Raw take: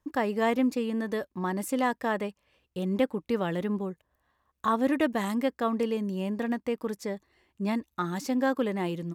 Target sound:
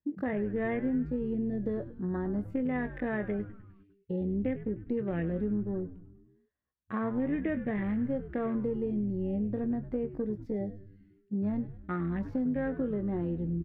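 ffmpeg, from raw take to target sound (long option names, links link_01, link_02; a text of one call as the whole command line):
ffmpeg -i in.wav -filter_complex "[0:a]highpass=frequency=72:poles=1,afwtdn=0.0141,acrossover=split=2900[link_01][link_02];[link_02]acompressor=threshold=-59dB:ratio=4:attack=1:release=60[link_03];[link_01][link_03]amix=inputs=2:normalize=0,equalizer=frequency=1000:width_type=o:width=1:gain=-12,equalizer=frequency=2000:width_type=o:width=1:gain=11,equalizer=frequency=4000:width_type=o:width=1:gain=5,equalizer=frequency=8000:width_type=o:width=1:gain=-8,atempo=0.67,tiltshelf=frequency=1100:gain=8,asplit=2[link_04][link_05];[link_05]adelay=24,volume=-12dB[link_06];[link_04][link_06]amix=inputs=2:normalize=0,acompressor=threshold=-27dB:ratio=4,asplit=7[link_07][link_08][link_09][link_10][link_11][link_12][link_13];[link_08]adelay=101,afreqshift=-100,volume=-13dB[link_14];[link_09]adelay=202,afreqshift=-200,volume=-17.6dB[link_15];[link_10]adelay=303,afreqshift=-300,volume=-22.2dB[link_16];[link_11]adelay=404,afreqshift=-400,volume=-26.7dB[link_17];[link_12]adelay=505,afreqshift=-500,volume=-31.3dB[link_18];[link_13]adelay=606,afreqshift=-600,volume=-35.9dB[link_19];[link_07][link_14][link_15][link_16][link_17][link_18][link_19]amix=inputs=7:normalize=0,volume=-2.5dB" out.wav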